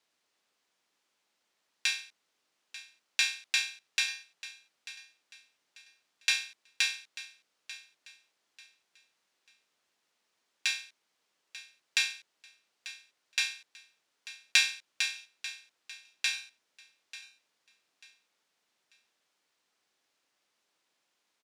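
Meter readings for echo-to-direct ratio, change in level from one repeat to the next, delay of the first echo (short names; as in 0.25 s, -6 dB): -15.5 dB, -10.5 dB, 0.891 s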